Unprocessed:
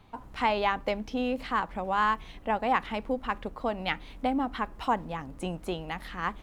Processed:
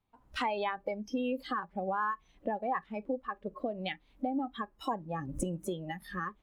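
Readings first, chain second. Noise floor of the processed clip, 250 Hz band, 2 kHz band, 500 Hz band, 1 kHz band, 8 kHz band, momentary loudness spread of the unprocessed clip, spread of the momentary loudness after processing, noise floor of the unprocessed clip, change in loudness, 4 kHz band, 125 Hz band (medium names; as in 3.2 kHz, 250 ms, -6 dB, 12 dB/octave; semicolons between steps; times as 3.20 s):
-67 dBFS, -3.5 dB, -7.0 dB, -4.0 dB, -6.5 dB, no reading, 9 LU, 6 LU, -49 dBFS, -5.5 dB, -6.5 dB, -2.0 dB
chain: recorder AGC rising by 37 dB/s; spectral noise reduction 20 dB; trim -6.5 dB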